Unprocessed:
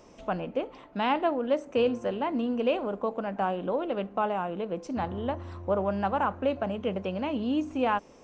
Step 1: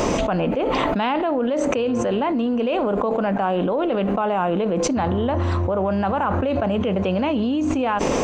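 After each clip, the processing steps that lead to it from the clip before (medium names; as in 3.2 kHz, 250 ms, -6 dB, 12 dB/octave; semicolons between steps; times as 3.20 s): band-stop 5.4 kHz, Q 9.7; level flattener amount 100%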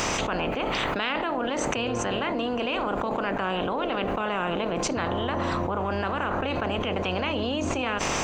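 spectral peaks clipped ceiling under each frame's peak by 18 dB; trim -6 dB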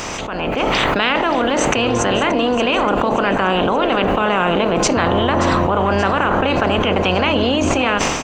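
level rider gain up to 12 dB; feedback delay 578 ms, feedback 47%, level -13.5 dB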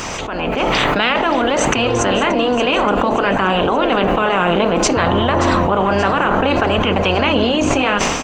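flange 0.58 Hz, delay 0.6 ms, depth 6.6 ms, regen -51%; trim +5 dB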